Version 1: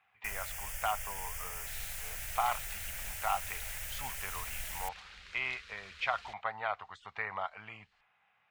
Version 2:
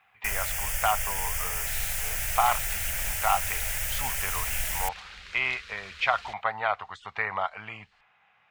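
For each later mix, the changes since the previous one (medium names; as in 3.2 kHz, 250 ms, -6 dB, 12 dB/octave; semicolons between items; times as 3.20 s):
speech +8.0 dB; first sound +11.0 dB; second sound +7.0 dB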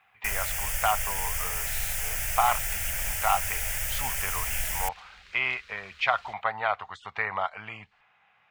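second sound -7.5 dB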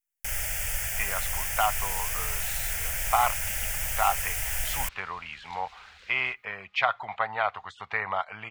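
speech: entry +0.75 s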